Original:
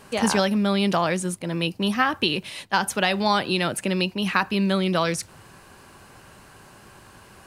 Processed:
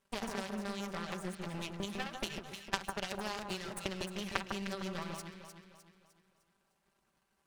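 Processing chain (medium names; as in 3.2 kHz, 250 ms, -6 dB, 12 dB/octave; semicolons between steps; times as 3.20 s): comb filter that takes the minimum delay 5.1 ms; compression 16:1, threshold -27 dBFS, peak gain reduction 12 dB; power-law waveshaper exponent 2; on a send: echo whose repeats swap between lows and highs 152 ms, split 1.5 kHz, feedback 64%, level -4 dB; on the sum: loudspeaker Doppler distortion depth 0.14 ms; trim +3.5 dB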